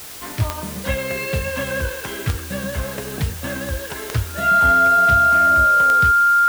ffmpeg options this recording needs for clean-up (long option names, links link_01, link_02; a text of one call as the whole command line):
ffmpeg -i in.wav -af "adeclick=threshold=4,bandreject=frequency=1400:width=30,afwtdn=0.016" out.wav